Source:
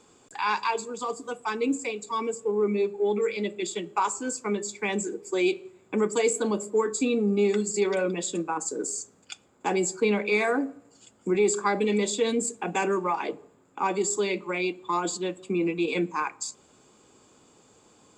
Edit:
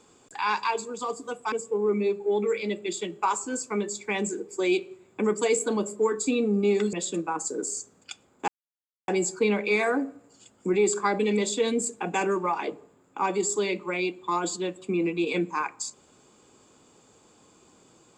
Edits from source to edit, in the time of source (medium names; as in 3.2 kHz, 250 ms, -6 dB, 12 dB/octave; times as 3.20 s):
1.52–2.26 s: delete
7.67–8.14 s: delete
9.69 s: insert silence 0.60 s